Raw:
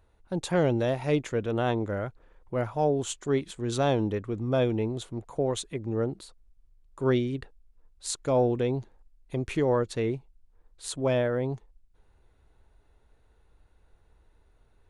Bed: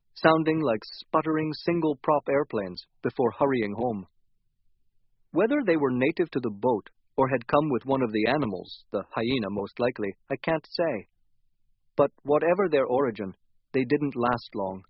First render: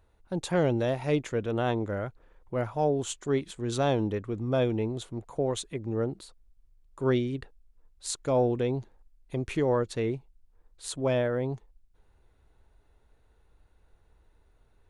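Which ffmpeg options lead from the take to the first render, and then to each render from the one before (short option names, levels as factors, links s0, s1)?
-af "volume=0.891"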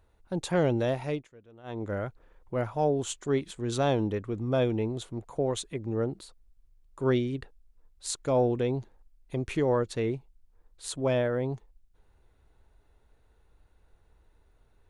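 -filter_complex "[0:a]asplit=3[s0][s1][s2];[s0]atrim=end=1.28,asetpts=PTS-STARTPTS,afade=t=out:st=0.98:d=0.3:silence=0.0630957[s3];[s1]atrim=start=1.28:end=1.63,asetpts=PTS-STARTPTS,volume=0.0631[s4];[s2]atrim=start=1.63,asetpts=PTS-STARTPTS,afade=t=in:d=0.3:silence=0.0630957[s5];[s3][s4][s5]concat=n=3:v=0:a=1"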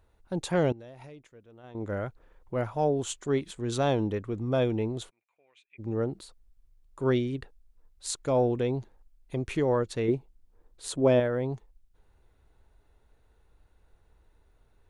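-filter_complex "[0:a]asettb=1/sr,asplit=3[s0][s1][s2];[s0]atrim=end=0.724[s3];[s1]atrim=start=0.72:end=1.75,asetpts=PTS-STARTPTS,afade=t=in:d=0.004:c=qsin,afade=t=out:st=1.026:d=0.004:c=qsin,acompressor=threshold=0.00794:ratio=20:attack=3.2:release=140:knee=1:detection=peak[s4];[s2]atrim=start=1.746[s5];[s3][s4]acrossfade=d=0.004:c1=hsin:c2=qsin[s6];[s6][s5]acrossfade=d=0.004:c1=qsin:c2=hsin,asplit=3[s7][s8][s9];[s7]afade=t=out:st=5.09:d=0.02[s10];[s8]bandpass=f=2400:t=q:w=19,afade=t=in:st=5.09:d=0.02,afade=t=out:st=5.78:d=0.02[s11];[s9]afade=t=in:st=5.78:d=0.02[s12];[s10][s11][s12]amix=inputs=3:normalize=0,asettb=1/sr,asplit=3[s13][s14][s15];[s13]atrim=end=10.084[s16];[s14]atrim=start=10.08:end=11.2,asetpts=PTS-STARTPTS,afade=t=in:d=0.004:c=qsin,afade=t=out:st=1.116:d=0.004:c=qsin,equalizer=f=340:t=o:w=2.2:g=7[s17];[s15]atrim=start=11.196[s18];[s16][s17]acrossfade=d=0.004:c1=hsin:c2=qsin[s19];[s19][s18]acrossfade=d=0.004:c1=qsin:c2=hsin"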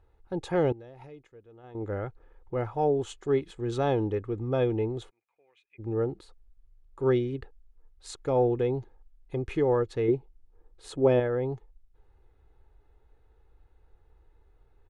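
-af "lowpass=f=1900:p=1,aecho=1:1:2.4:0.44"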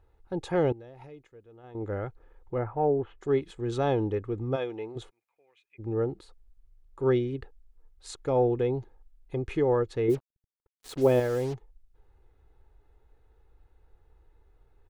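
-filter_complex "[0:a]asettb=1/sr,asplit=3[s0][s1][s2];[s0]atrim=end=2.584[s3];[s1]atrim=start=2.58:end=3.21,asetpts=PTS-STARTPTS,afade=t=in:d=0.004:c=qsin,afade=t=out:st=0.626:d=0.004:c=qsin,lowpass=f=2000:w=0.5412,lowpass=f=2000:w=1.3066[s4];[s2]atrim=start=3.206[s5];[s3][s4]acrossfade=d=0.004:c1=hsin:c2=qsin[s6];[s6][s5]acrossfade=d=0.004:c1=qsin:c2=hsin,asplit=3[s7][s8][s9];[s7]afade=t=out:st=4.55:d=0.02[s10];[s8]highpass=f=870:p=1,afade=t=in:st=4.55:d=0.02,afade=t=out:st=4.95:d=0.02[s11];[s9]afade=t=in:st=4.95:d=0.02[s12];[s10][s11][s12]amix=inputs=3:normalize=0,asplit=3[s13][s14][s15];[s13]afade=t=out:st=10.09:d=0.02[s16];[s14]acrusher=bits=6:mix=0:aa=0.5,afade=t=in:st=10.09:d=0.02,afade=t=out:st=11.53:d=0.02[s17];[s15]afade=t=in:st=11.53:d=0.02[s18];[s16][s17][s18]amix=inputs=3:normalize=0"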